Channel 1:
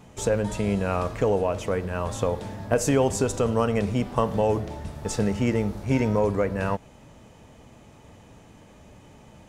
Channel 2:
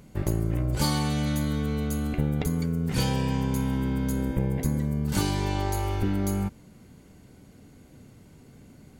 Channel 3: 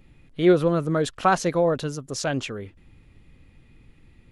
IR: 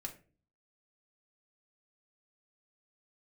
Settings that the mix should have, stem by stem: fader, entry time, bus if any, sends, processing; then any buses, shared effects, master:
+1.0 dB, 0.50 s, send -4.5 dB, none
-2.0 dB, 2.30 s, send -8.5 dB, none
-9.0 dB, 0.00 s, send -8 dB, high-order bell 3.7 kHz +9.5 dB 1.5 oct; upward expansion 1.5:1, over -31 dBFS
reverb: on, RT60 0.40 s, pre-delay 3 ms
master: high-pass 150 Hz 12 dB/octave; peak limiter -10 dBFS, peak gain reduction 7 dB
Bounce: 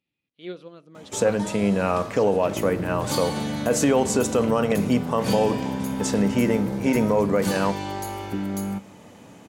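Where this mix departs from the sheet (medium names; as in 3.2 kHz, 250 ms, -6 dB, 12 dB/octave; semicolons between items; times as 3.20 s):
stem 1: entry 0.50 s -> 0.95 s; stem 3 -9.0 dB -> -19.5 dB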